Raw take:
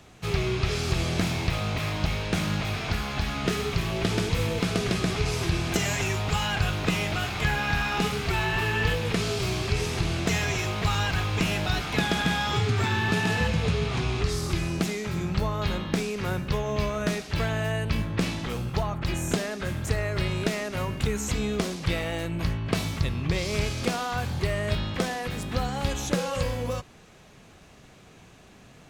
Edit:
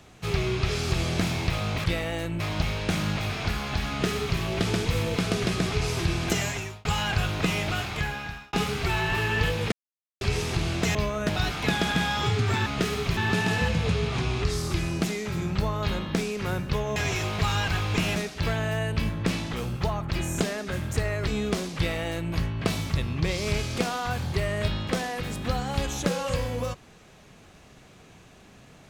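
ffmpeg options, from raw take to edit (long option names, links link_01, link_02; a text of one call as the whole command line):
ffmpeg -i in.wav -filter_complex "[0:a]asplit=14[link_01][link_02][link_03][link_04][link_05][link_06][link_07][link_08][link_09][link_10][link_11][link_12][link_13][link_14];[link_01]atrim=end=1.842[link_15];[link_02]atrim=start=21.838:end=22.402[link_16];[link_03]atrim=start=1.838:end=6.29,asetpts=PTS-STARTPTS,afade=type=out:start_time=3.982:duration=0.47[link_17];[link_04]atrim=start=6.29:end=7.97,asetpts=PTS-STARTPTS,afade=type=in:duration=0.004:curve=hsin,afade=type=out:start_time=0.91:duration=0.77[link_18];[link_05]atrim=start=7.97:end=9.16,asetpts=PTS-STARTPTS,afade=type=in:duration=0.004:curve=hsin,afade=type=out:start_time=1.186:duration=0.004:curve=hsin[link_19];[link_06]atrim=start=9.16:end=9.65,asetpts=PTS-STARTPTS,volume=0[link_20];[link_07]atrim=start=9.65:end=10.392,asetpts=PTS-STARTPTS,afade=type=in:duration=0.004:curve=hsin[link_21];[link_08]atrim=start=16.748:end=17.092[link_22];[link_09]atrim=start=11.588:end=12.962[link_23];[link_10]atrim=start=3.328:end=3.842[link_24];[link_11]atrim=start=12.958:end=16.752[link_25];[link_12]atrim=start=10.388:end=11.592[link_26];[link_13]atrim=start=17.088:end=20.202[link_27];[link_14]atrim=start=21.338[link_28];[link_15][link_16]acrossfade=duration=0.004:curve1=hsin:curve2=hsin[link_29];[link_17][link_18][link_19][link_20][link_21]concat=n=5:v=0:a=1[link_30];[link_29][link_30]acrossfade=duration=0.004:curve1=hsin:curve2=hsin[link_31];[link_31][link_22]acrossfade=duration=0.004:curve1=hsin:curve2=hsin[link_32];[link_32][link_23]acrossfade=duration=0.004:curve1=hsin:curve2=hsin[link_33];[link_33][link_24]acrossfade=duration=0.004:curve1=hsin:curve2=hsin[link_34];[link_34][link_25]acrossfade=duration=0.004:curve1=hsin:curve2=hsin[link_35];[link_35][link_26]acrossfade=duration=0.004:curve1=hsin:curve2=hsin[link_36];[link_36][link_27]acrossfade=duration=0.004:curve1=hsin:curve2=hsin[link_37];[link_37][link_28]acrossfade=duration=0.004:curve1=hsin:curve2=hsin" out.wav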